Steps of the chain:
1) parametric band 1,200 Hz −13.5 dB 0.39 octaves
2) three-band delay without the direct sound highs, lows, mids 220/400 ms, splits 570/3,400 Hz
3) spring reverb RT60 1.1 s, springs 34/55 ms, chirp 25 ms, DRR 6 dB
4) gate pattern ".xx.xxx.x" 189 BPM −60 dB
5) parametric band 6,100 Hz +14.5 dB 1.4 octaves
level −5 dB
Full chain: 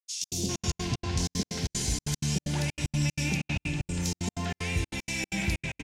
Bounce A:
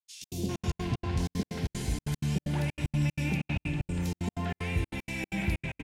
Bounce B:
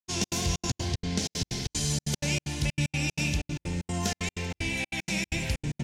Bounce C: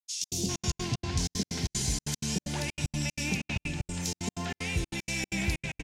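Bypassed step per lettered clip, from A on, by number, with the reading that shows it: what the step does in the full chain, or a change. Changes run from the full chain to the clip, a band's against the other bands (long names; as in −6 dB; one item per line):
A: 5, 8 kHz band −12.5 dB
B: 2, change in crest factor +1.5 dB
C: 3, 125 Hz band −2.0 dB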